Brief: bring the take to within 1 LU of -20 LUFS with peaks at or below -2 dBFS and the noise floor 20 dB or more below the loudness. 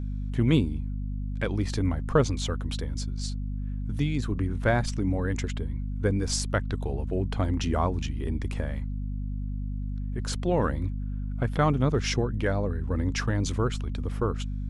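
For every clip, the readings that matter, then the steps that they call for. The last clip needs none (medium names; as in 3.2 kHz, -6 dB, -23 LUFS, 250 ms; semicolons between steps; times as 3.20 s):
hum 50 Hz; highest harmonic 250 Hz; hum level -29 dBFS; loudness -29.0 LUFS; peak level -9.5 dBFS; loudness target -20.0 LUFS
-> de-hum 50 Hz, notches 5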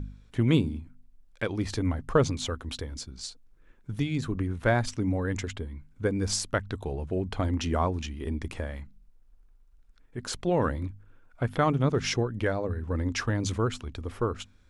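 hum not found; loudness -29.5 LUFS; peak level -10.0 dBFS; loudness target -20.0 LUFS
-> trim +9.5 dB; peak limiter -2 dBFS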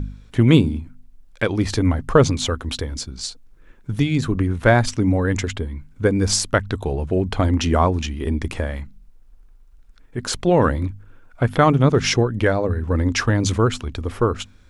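loudness -20.0 LUFS; peak level -2.0 dBFS; noise floor -49 dBFS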